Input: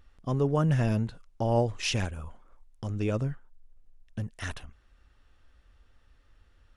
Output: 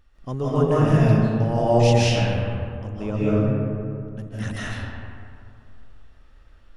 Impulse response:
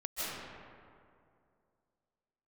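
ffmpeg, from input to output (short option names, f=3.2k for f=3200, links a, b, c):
-filter_complex "[0:a]asettb=1/sr,asplit=3[a][b][c];[a]atrim=end=1.994[d];[b]atrim=start=1.99:end=4.19,asetpts=PTS-STARTPTS,afade=t=in:d=0.004:c=qsin,afade=t=out:st=2.196:d=0.004:c=qsin,highshelf=f=4.1k:g=-10.5[e];[c]atrim=start=4.186[f];[d][e]acrossfade=d=0.004:c1=hsin:c2=qsin[g];[g][f]acrossfade=d=0.004:c1=qsin:c2=hsin[h];[1:a]atrim=start_sample=2205[i];[h][i]afir=irnorm=-1:irlink=0,volume=3.5dB"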